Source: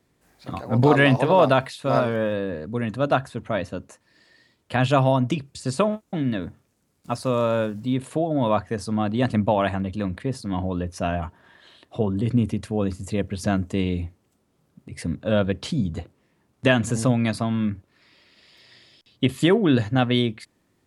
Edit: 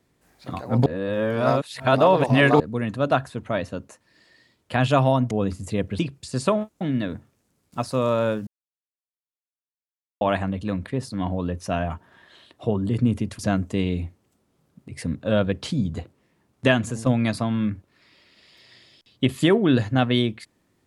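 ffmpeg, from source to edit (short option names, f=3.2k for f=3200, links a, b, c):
-filter_complex "[0:a]asplit=9[a][b][c][d][e][f][g][h][i];[a]atrim=end=0.862[j];[b]atrim=start=0.858:end=2.602,asetpts=PTS-STARTPTS,areverse[k];[c]atrim=start=2.598:end=5.312[l];[d]atrim=start=12.708:end=13.392[m];[e]atrim=start=5.308:end=7.79,asetpts=PTS-STARTPTS,afade=t=out:st=2.478:d=0.004:c=hsin[n];[f]atrim=start=7.79:end=9.53,asetpts=PTS-STARTPTS,volume=0[o];[g]atrim=start=9.53:end=12.712,asetpts=PTS-STARTPTS,afade=t=in:d=0.004:c=hsin[p];[h]atrim=start=13.388:end=17.06,asetpts=PTS-STARTPTS,afade=t=out:st=3.312:d=0.36:silence=0.316228[q];[i]atrim=start=17.06,asetpts=PTS-STARTPTS,afade=t=in:d=0.004:c=hsin:silence=0.316228[r];[j][k]acrossfade=d=0.004:c1=hsin:c2=hsin[s];[s][l]acrossfade=d=0.004:c1=hsin:c2=hsin[t];[t][m]acrossfade=d=0.004:c1=hsin:c2=hsin[u];[n][o][p]concat=n=3:v=0:a=1[v];[u][v]acrossfade=d=0.004:c1=hsin:c2=hsin[w];[q][r]concat=n=2:v=0:a=1[x];[w][x]acrossfade=d=0.004:c1=hsin:c2=hsin"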